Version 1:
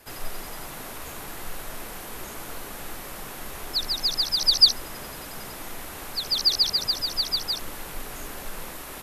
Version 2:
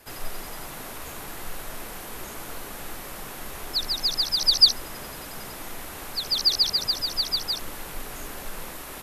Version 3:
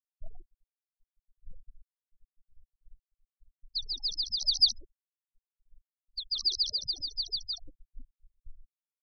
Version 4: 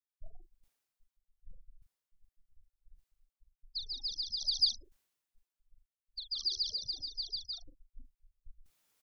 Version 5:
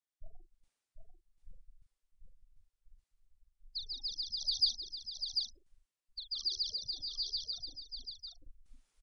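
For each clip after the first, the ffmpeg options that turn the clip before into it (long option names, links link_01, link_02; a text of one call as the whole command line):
ffmpeg -i in.wav -af anull out.wav
ffmpeg -i in.wav -af "agate=range=-15dB:threshold=-32dB:ratio=16:detection=peak,afftfilt=real='re*gte(hypot(re,im),0.0501)':imag='im*gte(hypot(re,im),0.0501)':win_size=1024:overlap=0.75,volume=-7.5dB" out.wav
ffmpeg -i in.wav -filter_complex "[0:a]areverse,acompressor=mode=upward:threshold=-49dB:ratio=2.5,areverse,asplit=2[link_01][link_02];[link_02]adelay=41,volume=-9dB[link_03];[link_01][link_03]amix=inputs=2:normalize=0,volume=-5.5dB" out.wav
ffmpeg -i in.wav -filter_complex "[0:a]aresample=22050,aresample=44100,asplit=2[link_01][link_02];[link_02]aecho=0:1:743:0.562[link_03];[link_01][link_03]amix=inputs=2:normalize=0,volume=-1.5dB" out.wav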